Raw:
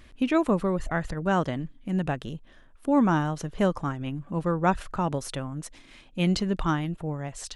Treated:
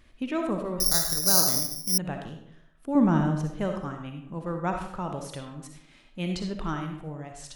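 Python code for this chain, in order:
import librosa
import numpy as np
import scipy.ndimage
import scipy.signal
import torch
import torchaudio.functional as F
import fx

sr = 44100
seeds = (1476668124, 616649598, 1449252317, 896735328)

y = fx.low_shelf(x, sr, hz=370.0, db=10.0, at=(2.95, 3.54))
y = fx.rev_freeverb(y, sr, rt60_s=0.67, hf_ratio=0.75, predelay_ms=20, drr_db=3.5)
y = fx.resample_bad(y, sr, factor=8, down='filtered', up='zero_stuff', at=(0.8, 1.98))
y = F.gain(torch.from_numpy(y), -6.5).numpy()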